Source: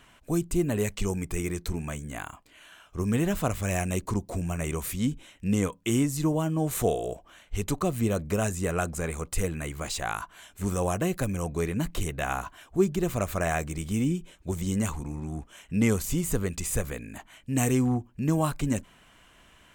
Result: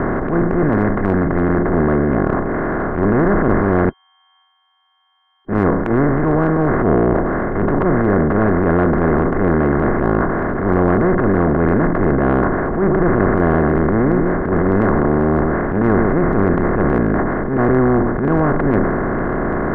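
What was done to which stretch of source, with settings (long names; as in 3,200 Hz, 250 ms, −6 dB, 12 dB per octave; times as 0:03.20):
0:00.63–0:01.55: drawn EQ curve 270 Hz 0 dB, 390 Hz −17 dB, 4,500 Hz +7 dB
0:03.89–0:05.49: beep over 3,170 Hz −12 dBFS
0:12.77–0:16.20: single-tap delay 130 ms −18 dB
whole clip: compressor on every frequency bin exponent 0.2; Butterworth low-pass 1,900 Hz 72 dB per octave; transient designer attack −12 dB, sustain +5 dB; level +4 dB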